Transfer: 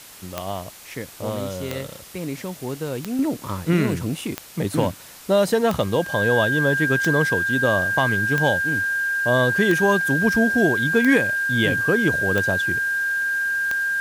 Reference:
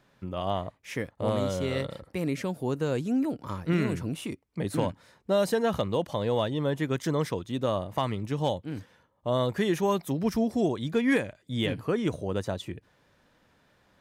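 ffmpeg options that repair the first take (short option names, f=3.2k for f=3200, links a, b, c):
-af "adeclick=t=4,bandreject=f=1.6k:w=30,afwtdn=0.0079,asetnsamples=n=441:p=0,asendcmd='3.19 volume volume -6.5dB',volume=0dB"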